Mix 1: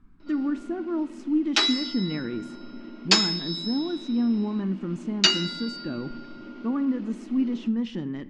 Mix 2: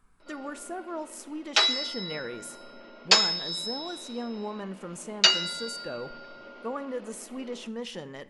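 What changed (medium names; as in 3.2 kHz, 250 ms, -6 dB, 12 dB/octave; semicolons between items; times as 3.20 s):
speech: remove distance through air 150 m; master: add resonant low shelf 390 Hz -9 dB, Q 3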